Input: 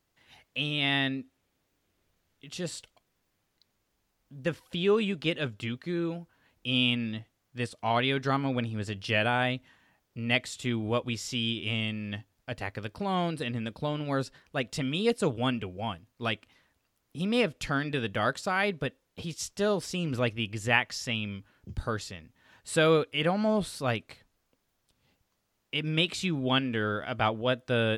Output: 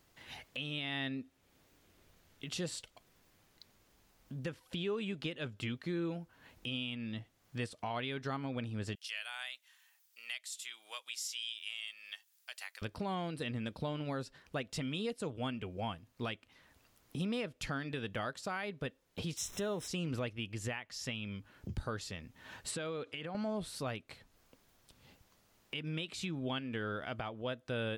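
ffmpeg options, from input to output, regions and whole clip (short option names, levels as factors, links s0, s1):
-filter_complex "[0:a]asettb=1/sr,asplit=3[s0][s1][s2];[s0]atrim=end=8.954[s3];[s1]atrim=start=8.95:end=12.82,asetpts=PTS-STARTPTS,afade=t=in:d=0.004:c=qsin,afade=t=out:st=3.866:d=0.004:c=qsin,highpass=840,deesser=0.35,aderivative[s4];[s2]atrim=start=12.816[s5];[s3][s4]acrossfade=d=0.004:c1=hsin:c2=qsin[s6];[s6][s5]acrossfade=d=0.004:c1=qsin:c2=hsin,asettb=1/sr,asplit=3[s7][s8][s9];[s7]atrim=end=19.374[s10];[s8]atrim=start=19.37:end=19.88,asetpts=PTS-STARTPTS,afade=t=in:d=0.004:c=qsin,afade=t=out:st=0.506:d=0.004:c=qsin,aeval=exprs='val(0)+0.5*0.00708*sgn(val(0))':c=same,asuperstop=centerf=4600:order=8:qfactor=4.4[s11];[s9]atrim=start=19.876[s12];[s10][s11]acrossfade=d=0.004:c1=hsin:c2=qsin[s13];[s13][s12]acrossfade=d=0.004:c1=qsin:c2=hsin,asettb=1/sr,asplit=3[s14][s15][s16];[s14]atrim=end=22.714[s17];[s15]atrim=start=22.71:end=23.35,asetpts=PTS-STARTPTS,afade=t=in:d=0.004:c=qsin,afade=t=out:st=0.636:d=0.004:c=qsin,acompressor=threshold=0.02:ratio=12:attack=3.2:release=140:knee=1:detection=peak,highpass=110,lowpass=7400[s18];[s16]atrim=start=23.346[s19];[s17][s18]acrossfade=d=0.004:c1=hsin:c2=qsin[s20];[s20][s19]acrossfade=d=0.004:c1=qsin:c2=hsin,acompressor=threshold=0.00224:ratio=2,alimiter=level_in=3.76:limit=0.0631:level=0:latency=1:release=414,volume=0.266,volume=2.51"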